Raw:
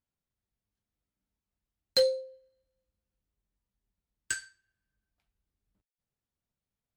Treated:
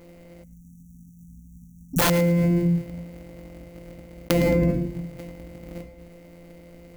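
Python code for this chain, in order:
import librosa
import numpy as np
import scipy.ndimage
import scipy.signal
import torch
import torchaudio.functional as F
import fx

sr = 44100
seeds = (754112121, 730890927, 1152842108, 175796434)

p1 = np.r_[np.sort(x[:len(x) // 256 * 256].reshape(-1, 256), axis=1).ravel(), x[len(x) // 256 * 256:]]
p2 = fx.peak_eq(p1, sr, hz=65.0, db=14.5, octaves=0.26)
p3 = fx.room_shoebox(p2, sr, seeds[0], volume_m3=87.0, walls='mixed', distance_m=0.52)
p4 = fx.spec_erase(p3, sr, start_s=0.43, length_s=1.58, low_hz=260.0, high_hz=5600.0)
p5 = fx.small_body(p4, sr, hz=(270.0, 520.0, 2100.0), ring_ms=25, db=15)
p6 = (np.mod(10.0 ** (10.0 / 20.0) * p5 + 1.0, 2.0) - 1.0) / 10.0 ** (10.0 / 20.0)
p7 = fx.high_shelf(p6, sr, hz=11000.0, db=9.0)
p8 = p7 + fx.echo_thinned(p7, sr, ms=109, feedback_pct=18, hz=1000.0, wet_db=-22.5, dry=0)
p9 = fx.env_flatten(p8, sr, amount_pct=100)
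y = p9 * librosa.db_to_amplitude(-7.5)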